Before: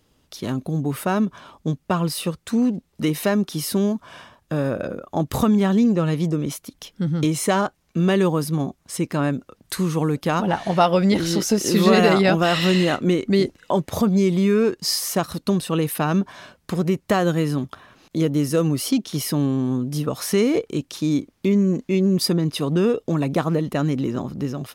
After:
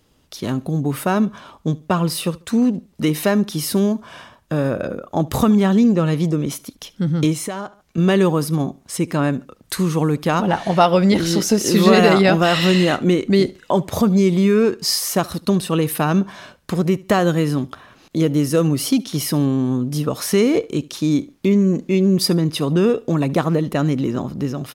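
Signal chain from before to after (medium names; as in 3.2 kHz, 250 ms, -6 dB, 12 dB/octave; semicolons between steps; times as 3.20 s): feedback delay 72 ms, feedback 30%, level -22 dB; 7.33–7.98 s: compression 6:1, threshold -28 dBFS, peak gain reduction 12.5 dB; trim +3 dB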